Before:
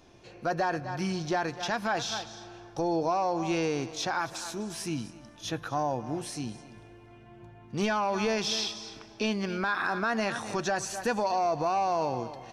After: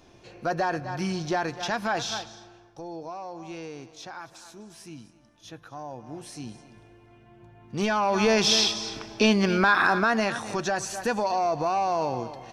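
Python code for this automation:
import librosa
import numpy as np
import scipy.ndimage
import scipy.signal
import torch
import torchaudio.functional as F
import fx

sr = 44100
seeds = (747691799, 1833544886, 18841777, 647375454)

y = fx.gain(x, sr, db=fx.line((2.16, 2.0), (2.79, -10.0), (5.77, -10.0), (6.5, -2.0), (7.45, -2.0), (8.49, 9.0), (9.81, 9.0), (10.4, 2.0)))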